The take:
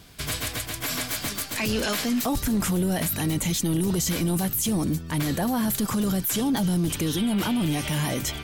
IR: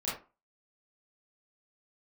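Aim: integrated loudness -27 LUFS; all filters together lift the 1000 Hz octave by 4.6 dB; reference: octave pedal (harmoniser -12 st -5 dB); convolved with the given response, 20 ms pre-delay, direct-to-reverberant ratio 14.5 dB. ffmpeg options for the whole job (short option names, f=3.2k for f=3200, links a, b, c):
-filter_complex "[0:a]equalizer=f=1k:t=o:g=6,asplit=2[a][b];[1:a]atrim=start_sample=2205,adelay=20[c];[b][c]afir=irnorm=-1:irlink=0,volume=-19.5dB[d];[a][d]amix=inputs=2:normalize=0,asplit=2[e][f];[f]asetrate=22050,aresample=44100,atempo=2,volume=-5dB[g];[e][g]amix=inputs=2:normalize=0,volume=-3.5dB"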